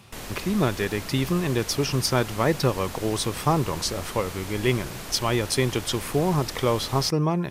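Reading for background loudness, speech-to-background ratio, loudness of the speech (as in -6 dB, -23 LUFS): -36.5 LUFS, 11.5 dB, -25.0 LUFS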